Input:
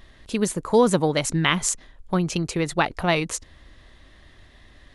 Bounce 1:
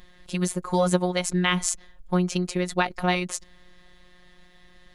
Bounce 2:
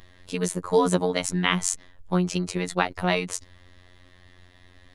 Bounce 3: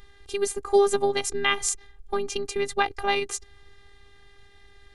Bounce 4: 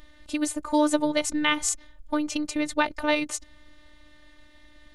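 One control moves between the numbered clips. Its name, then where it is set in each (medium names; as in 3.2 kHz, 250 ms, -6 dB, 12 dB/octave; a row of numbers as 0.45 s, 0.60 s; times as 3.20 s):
robot voice, frequency: 180 Hz, 90 Hz, 400 Hz, 300 Hz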